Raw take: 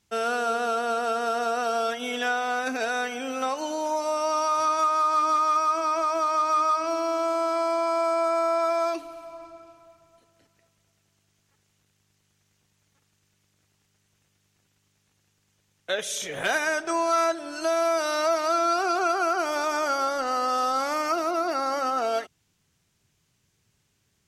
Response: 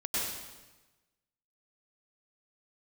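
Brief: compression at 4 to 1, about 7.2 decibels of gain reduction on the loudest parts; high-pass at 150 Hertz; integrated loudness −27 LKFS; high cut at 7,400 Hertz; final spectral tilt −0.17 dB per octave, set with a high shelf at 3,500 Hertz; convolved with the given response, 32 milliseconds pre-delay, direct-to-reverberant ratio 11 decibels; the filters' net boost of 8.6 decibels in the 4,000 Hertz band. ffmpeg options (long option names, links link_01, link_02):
-filter_complex "[0:a]highpass=150,lowpass=7400,highshelf=frequency=3500:gain=7.5,equalizer=frequency=4000:width_type=o:gain=6,acompressor=threshold=-27dB:ratio=4,asplit=2[link_01][link_02];[1:a]atrim=start_sample=2205,adelay=32[link_03];[link_02][link_03]afir=irnorm=-1:irlink=0,volume=-17.5dB[link_04];[link_01][link_04]amix=inputs=2:normalize=0,volume=1.5dB"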